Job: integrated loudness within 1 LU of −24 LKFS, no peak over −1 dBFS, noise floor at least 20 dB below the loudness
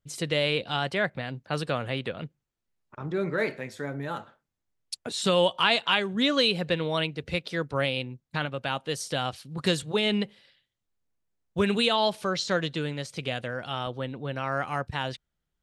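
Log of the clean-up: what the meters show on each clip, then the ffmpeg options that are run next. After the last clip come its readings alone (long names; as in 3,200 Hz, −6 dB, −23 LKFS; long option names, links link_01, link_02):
integrated loudness −28.0 LKFS; sample peak −8.0 dBFS; target loudness −24.0 LKFS
→ -af "volume=4dB"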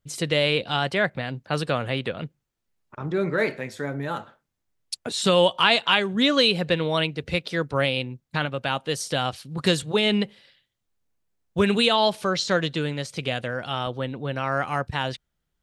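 integrated loudness −24.0 LKFS; sample peak −4.0 dBFS; background noise floor −79 dBFS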